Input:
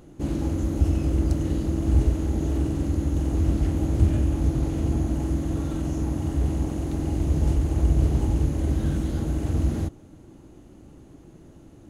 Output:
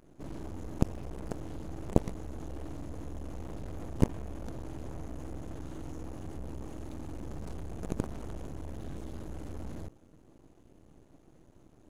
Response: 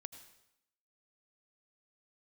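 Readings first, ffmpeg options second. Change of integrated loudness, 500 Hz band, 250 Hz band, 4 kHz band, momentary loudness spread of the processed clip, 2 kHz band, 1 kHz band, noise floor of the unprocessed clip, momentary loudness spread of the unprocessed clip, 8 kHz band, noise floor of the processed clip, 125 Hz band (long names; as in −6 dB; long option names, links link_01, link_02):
−14.5 dB, −8.5 dB, −12.5 dB, −11.5 dB, 12 LU, −9.5 dB, −7.0 dB, −49 dBFS, 5 LU, −11.5 dB, −60 dBFS, −16.0 dB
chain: -af "aeval=exprs='0.422*(cos(1*acos(clip(val(0)/0.422,-1,1)))-cos(1*PI/2))+0.211*(cos(3*acos(clip(val(0)/0.422,-1,1)))-cos(3*PI/2))+0.0133*(cos(5*acos(clip(val(0)/0.422,-1,1)))-cos(5*PI/2))+0.0075*(cos(8*acos(clip(val(0)/0.422,-1,1)))-cos(8*PI/2))':channel_layout=same,aeval=exprs='max(val(0),0)':channel_layout=same,volume=2.5dB"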